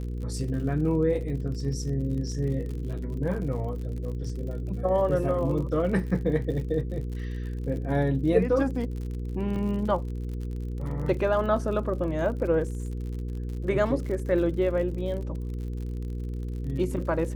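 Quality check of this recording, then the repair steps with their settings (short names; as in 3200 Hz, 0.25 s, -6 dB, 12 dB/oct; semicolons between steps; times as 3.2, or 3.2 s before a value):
crackle 58/s -36 dBFS
hum 60 Hz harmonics 8 -32 dBFS
9.56 gap 3.4 ms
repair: de-click; de-hum 60 Hz, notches 8; interpolate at 9.56, 3.4 ms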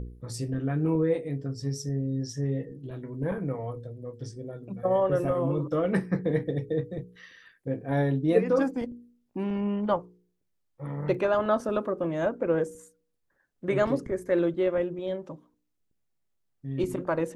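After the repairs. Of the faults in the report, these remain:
none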